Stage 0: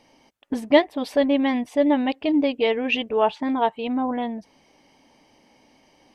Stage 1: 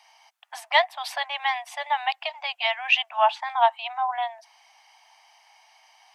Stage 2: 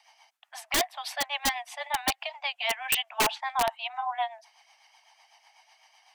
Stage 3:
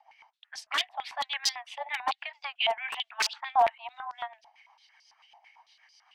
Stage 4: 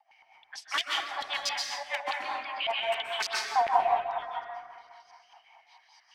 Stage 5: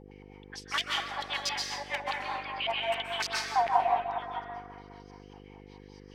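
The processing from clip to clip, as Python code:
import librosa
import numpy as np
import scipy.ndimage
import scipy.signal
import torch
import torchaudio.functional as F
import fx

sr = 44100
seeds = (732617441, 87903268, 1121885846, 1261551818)

y1 = scipy.signal.sosfilt(scipy.signal.butter(16, 680.0, 'highpass', fs=sr, output='sos'), x)
y1 = y1 * librosa.db_to_amplitude(4.0)
y2 = fx.rotary(y1, sr, hz=8.0)
y2 = (np.mod(10.0 ** (17.5 / 20.0) * y2 + 1.0, 2.0) - 1.0) / 10.0 ** (17.5 / 20.0)
y3 = fx.filter_held_bandpass(y2, sr, hz=9.0, low_hz=770.0, high_hz=5000.0)
y3 = y3 * librosa.db_to_amplitude(8.0)
y4 = fx.rev_plate(y3, sr, seeds[0], rt60_s=2.0, hf_ratio=0.35, predelay_ms=115, drr_db=-2.5)
y4 = fx.rotary(y4, sr, hz=5.0)
y5 = fx.dmg_buzz(y4, sr, base_hz=50.0, harmonics=10, level_db=-50.0, tilt_db=-1, odd_only=False)
y5 = y5 * librosa.db_to_amplitude(-1.0)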